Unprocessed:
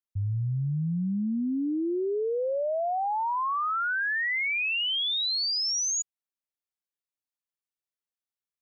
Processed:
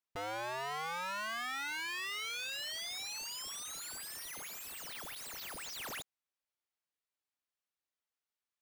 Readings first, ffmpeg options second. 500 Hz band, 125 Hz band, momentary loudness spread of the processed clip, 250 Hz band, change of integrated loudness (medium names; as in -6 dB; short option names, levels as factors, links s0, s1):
-17.5 dB, -29.5 dB, 6 LU, -27.0 dB, -12.5 dB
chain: -filter_complex "[0:a]aeval=exprs='(mod(56.2*val(0)+1,2)-1)/56.2':c=same,asplit=2[s0][s1];[s1]highpass=f=720:p=1,volume=1.78,asoftclip=type=tanh:threshold=0.0188[s2];[s0][s2]amix=inputs=2:normalize=0,lowpass=f=3300:p=1,volume=0.501,volume=1.12"